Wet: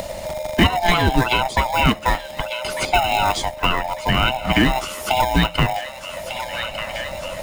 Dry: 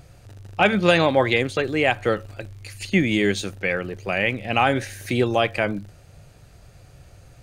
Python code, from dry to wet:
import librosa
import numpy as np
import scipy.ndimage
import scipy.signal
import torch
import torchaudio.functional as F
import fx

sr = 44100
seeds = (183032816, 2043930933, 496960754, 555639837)

p1 = fx.band_swap(x, sr, width_hz=500)
p2 = fx.hpss(p1, sr, part='harmonic', gain_db=-4)
p3 = fx.sample_hold(p2, sr, seeds[0], rate_hz=1500.0, jitter_pct=0)
p4 = p2 + (p3 * librosa.db_to_amplitude(-8.0))
p5 = fx.echo_wet_highpass(p4, sr, ms=1197, feedback_pct=54, hz=1400.0, wet_db=-16.0)
p6 = fx.band_squash(p5, sr, depth_pct=70)
y = p6 * librosa.db_to_amplitude(4.0)